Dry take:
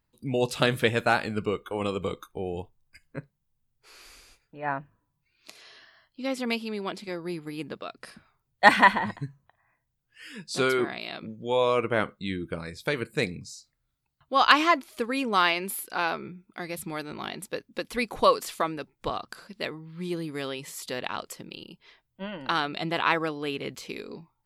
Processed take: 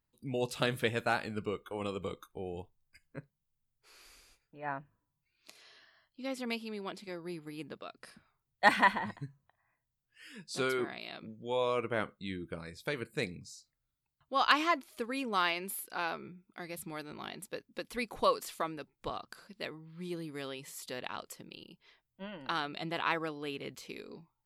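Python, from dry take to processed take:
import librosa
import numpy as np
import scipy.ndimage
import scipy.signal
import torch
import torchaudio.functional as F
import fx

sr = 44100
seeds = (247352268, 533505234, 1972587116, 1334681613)

y = fx.high_shelf(x, sr, hz=11000.0, db=4.0)
y = F.gain(torch.from_numpy(y), -8.0).numpy()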